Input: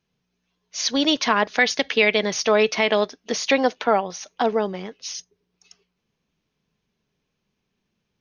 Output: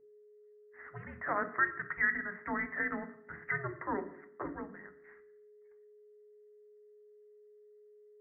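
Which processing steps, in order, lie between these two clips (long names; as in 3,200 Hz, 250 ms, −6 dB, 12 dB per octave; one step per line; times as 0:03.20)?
frequency shifter −390 Hz
first difference
in parallel at −1.5 dB: brickwall limiter −24 dBFS, peak gain reduction 9 dB
on the sum: leveller curve on the samples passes 1
Chebyshev low-pass filter 2,000 Hz, order 8
steady tone 420 Hz −59 dBFS
on a send at −7 dB: convolution reverb RT60 0.70 s, pre-delay 3 ms
on the sum: level −3 dB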